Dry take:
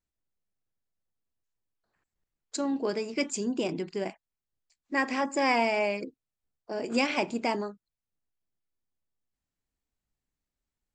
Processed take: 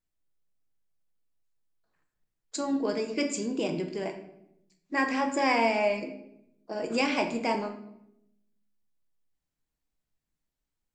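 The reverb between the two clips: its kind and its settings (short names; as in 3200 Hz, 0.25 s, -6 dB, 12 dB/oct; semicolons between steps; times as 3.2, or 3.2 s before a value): shoebox room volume 210 m³, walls mixed, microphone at 0.6 m; gain -1 dB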